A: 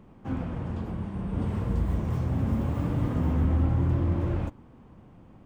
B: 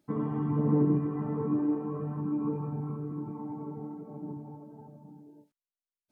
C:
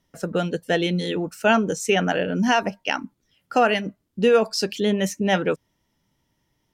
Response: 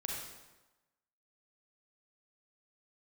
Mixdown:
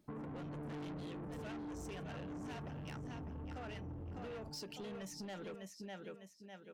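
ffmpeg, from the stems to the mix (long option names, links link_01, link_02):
-filter_complex "[0:a]tiltshelf=frequency=1100:gain=5,volume=-13dB[link_01];[1:a]volume=-1.5dB[link_02];[2:a]volume=-10.5dB,asplit=2[link_03][link_04];[link_04]volume=-12.5dB[link_05];[link_01][link_03]amix=inputs=2:normalize=0,agate=range=-17dB:threshold=-42dB:ratio=16:detection=peak,acompressor=threshold=-31dB:ratio=4,volume=0dB[link_06];[link_05]aecho=0:1:602|1204|1806|2408:1|0.29|0.0841|0.0244[link_07];[link_02][link_06][link_07]amix=inputs=3:normalize=0,asoftclip=type=tanh:threshold=-34.5dB,acompressor=threshold=-45dB:ratio=6"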